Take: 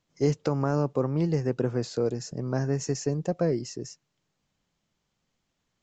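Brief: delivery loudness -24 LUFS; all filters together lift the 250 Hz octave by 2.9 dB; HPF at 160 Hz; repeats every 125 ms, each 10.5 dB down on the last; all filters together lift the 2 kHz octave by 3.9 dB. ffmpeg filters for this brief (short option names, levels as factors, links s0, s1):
-af "highpass=160,equalizer=f=250:t=o:g=5,equalizer=f=2000:t=o:g=5,aecho=1:1:125|250|375:0.299|0.0896|0.0269,volume=1.33"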